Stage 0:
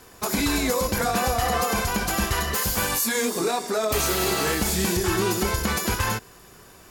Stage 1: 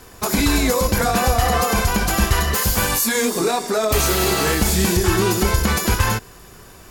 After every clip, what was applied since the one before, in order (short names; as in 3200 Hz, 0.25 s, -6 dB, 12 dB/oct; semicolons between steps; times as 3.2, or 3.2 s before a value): low shelf 93 Hz +8 dB; gain +4.5 dB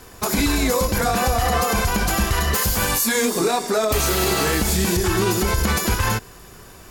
limiter -10 dBFS, peak gain reduction 5 dB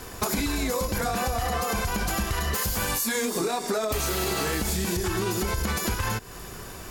compressor 6:1, threshold -28 dBFS, peak gain reduction 12 dB; gain +3.5 dB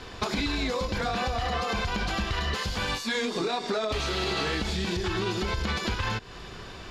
synth low-pass 3800 Hz, resonance Q 1.9; gain -2 dB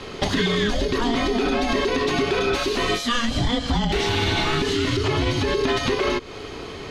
frequency shift -470 Hz; gain +7 dB